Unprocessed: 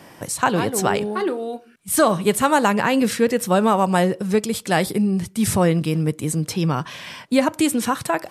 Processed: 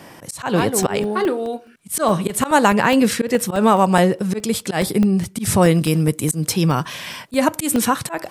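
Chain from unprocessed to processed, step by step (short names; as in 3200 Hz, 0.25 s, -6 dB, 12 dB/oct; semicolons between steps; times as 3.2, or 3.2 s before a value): 5.61–7.86 high shelf 6300 Hz -> 12000 Hz +11.5 dB; auto swell 0.122 s; crackling interface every 0.21 s, samples 64, zero, from 0.41; gain +3.5 dB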